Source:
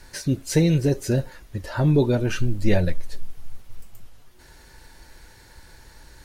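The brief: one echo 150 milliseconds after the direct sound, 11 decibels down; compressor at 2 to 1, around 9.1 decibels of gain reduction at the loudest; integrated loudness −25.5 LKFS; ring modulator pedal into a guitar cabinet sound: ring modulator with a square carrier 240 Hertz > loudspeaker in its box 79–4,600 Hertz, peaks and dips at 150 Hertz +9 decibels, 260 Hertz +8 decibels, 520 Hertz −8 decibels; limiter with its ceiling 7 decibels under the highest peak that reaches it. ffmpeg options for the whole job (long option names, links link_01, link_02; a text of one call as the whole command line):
ffmpeg -i in.wav -af "acompressor=threshold=-29dB:ratio=2,alimiter=limit=-22.5dB:level=0:latency=1,aecho=1:1:150:0.282,aeval=exprs='val(0)*sgn(sin(2*PI*240*n/s))':channel_layout=same,highpass=79,equalizer=frequency=150:width_type=q:width=4:gain=9,equalizer=frequency=260:width_type=q:width=4:gain=8,equalizer=frequency=520:width_type=q:width=4:gain=-8,lowpass=frequency=4600:width=0.5412,lowpass=frequency=4600:width=1.3066,volume=2dB" out.wav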